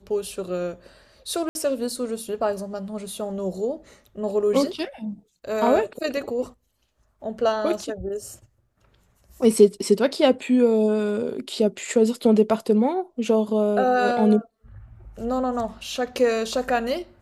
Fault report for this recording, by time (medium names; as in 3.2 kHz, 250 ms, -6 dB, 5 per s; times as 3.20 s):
1.49–1.55 s: dropout 61 ms